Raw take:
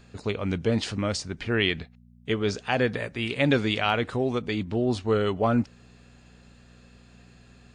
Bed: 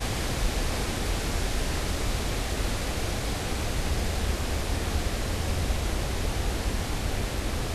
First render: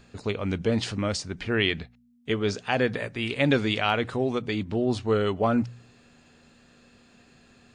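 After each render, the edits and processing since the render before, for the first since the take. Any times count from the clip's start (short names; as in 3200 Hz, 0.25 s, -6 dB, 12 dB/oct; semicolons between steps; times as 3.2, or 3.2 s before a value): de-hum 60 Hz, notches 3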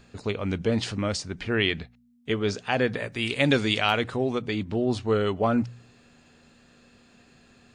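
3.12–4.04 high shelf 4500 Hz +10 dB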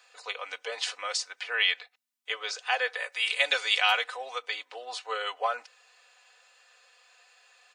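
Bessel high-pass 960 Hz, order 8; comb 4 ms, depth 77%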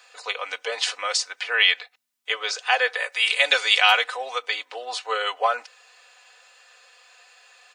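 gain +7 dB; limiter -3 dBFS, peak gain reduction 2 dB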